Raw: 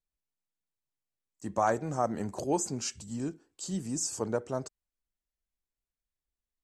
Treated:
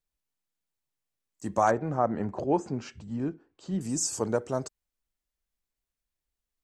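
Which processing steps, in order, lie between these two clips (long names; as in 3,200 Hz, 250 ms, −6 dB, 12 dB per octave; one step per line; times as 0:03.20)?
0:01.71–0:03.81: low-pass filter 2,200 Hz 12 dB per octave
level +3.5 dB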